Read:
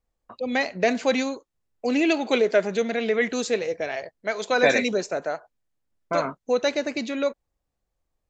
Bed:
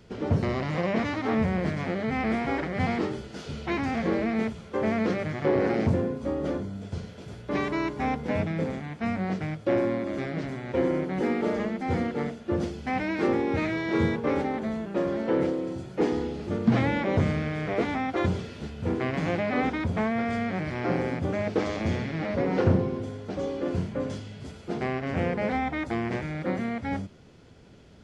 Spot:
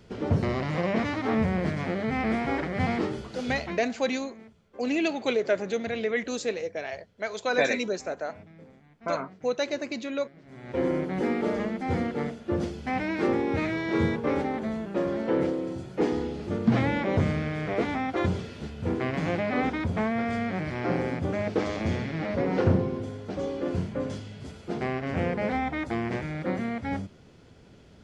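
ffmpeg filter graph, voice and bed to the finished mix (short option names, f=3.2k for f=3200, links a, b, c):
-filter_complex "[0:a]adelay=2950,volume=-5dB[a];[1:a]volume=21dB,afade=t=out:st=3.57:d=0.24:silence=0.0841395,afade=t=in:st=10.45:d=0.43:silence=0.0891251[b];[a][b]amix=inputs=2:normalize=0"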